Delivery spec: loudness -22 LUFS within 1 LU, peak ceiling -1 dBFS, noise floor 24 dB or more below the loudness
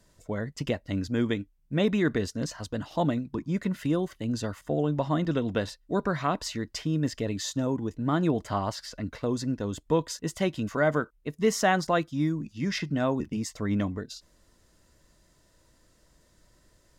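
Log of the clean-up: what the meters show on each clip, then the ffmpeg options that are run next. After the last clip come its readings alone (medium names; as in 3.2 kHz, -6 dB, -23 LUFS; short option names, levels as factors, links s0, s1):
loudness -29.0 LUFS; peak level -10.5 dBFS; loudness target -22.0 LUFS
-> -af "volume=2.24"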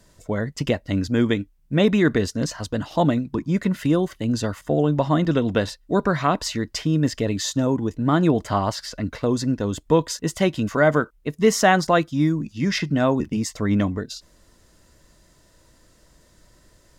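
loudness -22.0 LUFS; peak level -3.5 dBFS; noise floor -57 dBFS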